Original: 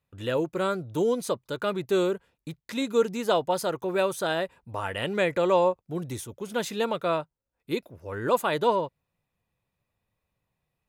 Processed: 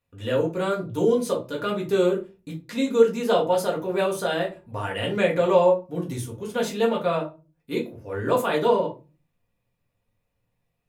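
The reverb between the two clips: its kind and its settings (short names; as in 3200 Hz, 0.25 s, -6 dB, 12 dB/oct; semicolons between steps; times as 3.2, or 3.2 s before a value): shoebox room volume 120 m³, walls furnished, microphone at 1.8 m; gain -2.5 dB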